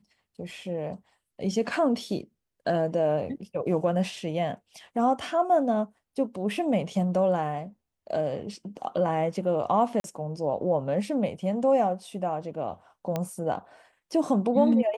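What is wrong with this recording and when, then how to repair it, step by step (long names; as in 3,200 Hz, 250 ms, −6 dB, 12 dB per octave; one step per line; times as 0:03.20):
0:10.00–0:10.04: drop-out 42 ms
0:13.16: click −15 dBFS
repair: click removal
repair the gap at 0:10.00, 42 ms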